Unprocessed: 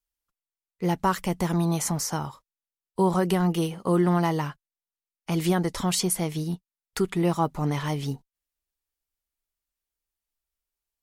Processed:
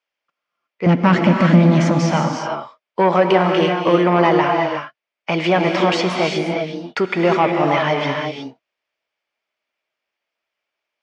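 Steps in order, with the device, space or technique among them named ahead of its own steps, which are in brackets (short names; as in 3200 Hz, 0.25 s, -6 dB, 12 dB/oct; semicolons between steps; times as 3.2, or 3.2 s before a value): 0.86–2.12 resonant low shelf 350 Hz +11.5 dB, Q 3; overdrive pedal into a guitar cabinet (overdrive pedal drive 22 dB, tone 7500 Hz, clips at -2.5 dBFS; speaker cabinet 110–4400 Hz, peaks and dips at 590 Hz +9 dB, 2300 Hz +5 dB, 4000 Hz -8 dB); non-linear reverb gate 0.39 s rising, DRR 2 dB; gain -2.5 dB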